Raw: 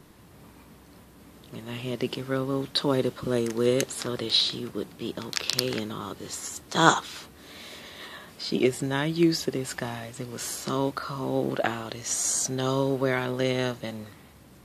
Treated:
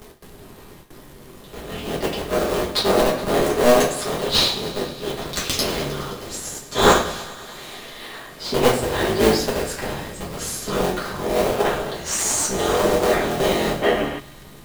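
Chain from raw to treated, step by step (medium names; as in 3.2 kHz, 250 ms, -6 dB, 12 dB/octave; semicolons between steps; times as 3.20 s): cycle switcher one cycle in 3, inverted; treble shelf 9.9 kHz +6 dB; simulated room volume 39 m³, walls mixed, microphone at 1.4 m; crackle 230 per s -37 dBFS; gate with hold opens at -30 dBFS; bass shelf 110 Hz -7 dB; in parallel at -8 dB: decimation with a swept rate 28×, swing 160% 0.22 Hz; on the sum: upward compressor, threshold -32 dBFS; on a send: thinning echo 104 ms, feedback 81%, high-pass 420 Hz, level -17 dB; on the sum: time-frequency box 13.82–14.19 s, 210–3400 Hz +11 dB; trim -4.5 dB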